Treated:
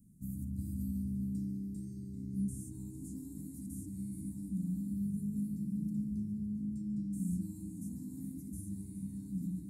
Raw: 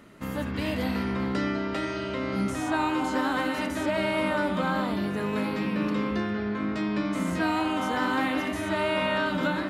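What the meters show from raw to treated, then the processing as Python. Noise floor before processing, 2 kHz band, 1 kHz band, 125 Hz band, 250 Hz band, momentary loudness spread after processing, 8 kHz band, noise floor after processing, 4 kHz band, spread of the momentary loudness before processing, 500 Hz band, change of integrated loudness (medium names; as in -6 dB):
-32 dBFS, under -40 dB, under -40 dB, -4.5 dB, -9.0 dB, 8 LU, -7.0 dB, -48 dBFS, under -35 dB, 4 LU, under -30 dB, -12.0 dB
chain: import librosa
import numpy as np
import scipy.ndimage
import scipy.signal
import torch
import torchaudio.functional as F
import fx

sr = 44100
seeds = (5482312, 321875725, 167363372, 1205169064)

p1 = scipy.signal.sosfilt(scipy.signal.ellip(3, 1.0, 50, [190.0, 8600.0], 'bandstop', fs=sr, output='sos'), x)
p2 = p1 + fx.echo_heads(p1, sr, ms=140, heads='first and third', feedback_pct=73, wet_db=-15.5, dry=0)
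y = p2 * librosa.db_to_amplitude(-3.5)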